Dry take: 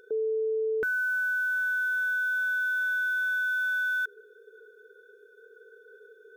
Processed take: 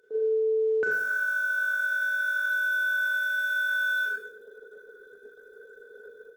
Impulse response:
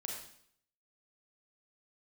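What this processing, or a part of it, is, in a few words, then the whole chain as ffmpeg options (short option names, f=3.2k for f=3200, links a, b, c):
far-field microphone of a smart speaker: -filter_complex "[1:a]atrim=start_sample=2205[a];[0:a][a]afir=irnorm=-1:irlink=0,highpass=f=96:w=0.5412,highpass=f=96:w=1.3066,dynaudnorm=f=110:g=3:m=9.5dB,volume=-5dB" -ar 48000 -c:a libopus -b:a 16k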